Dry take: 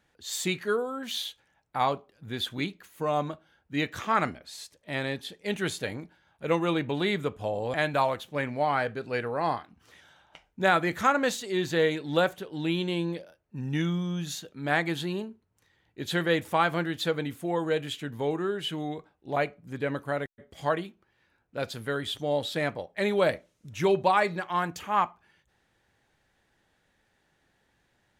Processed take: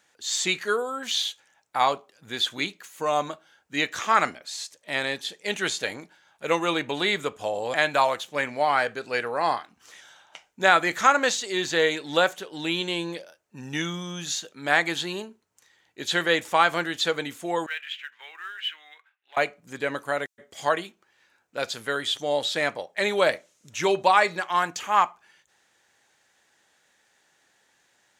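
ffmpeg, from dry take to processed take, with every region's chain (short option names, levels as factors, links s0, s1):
-filter_complex "[0:a]asettb=1/sr,asplit=3[s0][s1][s2];[s0]atrim=end=17.664[s3];[s1]atrim=start=17.66:end=19.37,asetpts=PTS-STARTPTS,afade=t=in:d=0.004:c=qsin,afade=t=out:st=1.706:d=0.004:c=qsin,asuperpass=centerf=2100:order=4:qfactor=1.4,acrusher=bits=8:mode=log:mix=0:aa=0.000001[s4];[s2]atrim=start=19.366[s5];[s3][s4]acrossfade=d=0.004:c1=hsin:c2=qsin[s6];[s6][s5]acrossfade=d=0.004:c1=qsin:c2=hsin,highpass=f=710:p=1,acrossover=split=6100[s7][s8];[s8]acompressor=threshold=0.002:ratio=4:attack=1:release=60[s9];[s7][s9]amix=inputs=2:normalize=0,equalizer=f=6900:t=o:w=0.8:g=8.5,volume=2.11"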